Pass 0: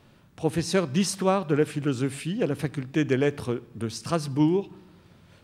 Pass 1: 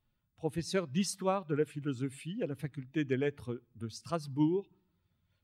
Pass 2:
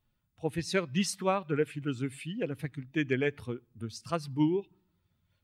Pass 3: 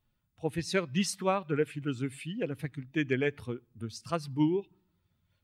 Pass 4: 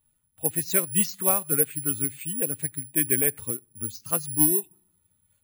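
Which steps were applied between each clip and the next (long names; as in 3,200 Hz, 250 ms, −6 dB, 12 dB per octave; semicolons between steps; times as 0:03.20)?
spectral dynamics exaggerated over time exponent 1.5; level −6.5 dB
dynamic equaliser 2,200 Hz, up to +7 dB, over −55 dBFS, Q 1.2; level +2 dB
no processing that can be heard
bad sample-rate conversion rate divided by 4×, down filtered, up zero stuff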